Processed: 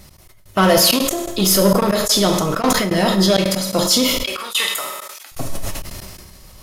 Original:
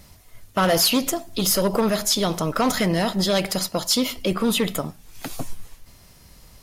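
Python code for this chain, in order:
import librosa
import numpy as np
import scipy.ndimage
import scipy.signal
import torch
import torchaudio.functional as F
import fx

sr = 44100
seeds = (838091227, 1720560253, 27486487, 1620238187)

y = fx.highpass(x, sr, hz=1200.0, slope=12, at=(4.23, 5.32))
y = fx.rev_fdn(y, sr, rt60_s=0.97, lf_ratio=0.7, hf_ratio=0.8, size_ms=16.0, drr_db=2.5)
y = fx.step_gate(y, sr, bpm=165, pattern='x.x..xxxx', floor_db=-24.0, edge_ms=4.5)
y = fx.sustainer(y, sr, db_per_s=33.0)
y = F.gain(torch.from_numpy(y), 3.5).numpy()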